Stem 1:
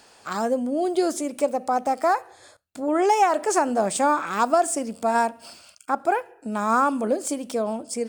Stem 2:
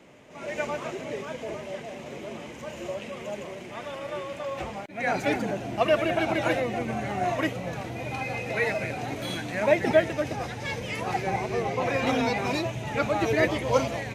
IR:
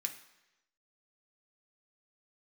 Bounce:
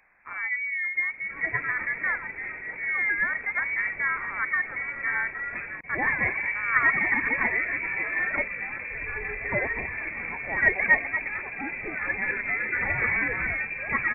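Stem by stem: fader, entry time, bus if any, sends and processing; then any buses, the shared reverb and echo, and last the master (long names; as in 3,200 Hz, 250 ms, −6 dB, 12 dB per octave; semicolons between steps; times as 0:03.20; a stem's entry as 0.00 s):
−9.5 dB, 0.00 s, no send, low-shelf EQ 390 Hz +7.5 dB
−0.5 dB, 0.95 s, no send, no processing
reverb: not used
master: voice inversion scrambler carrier 2,500 Hz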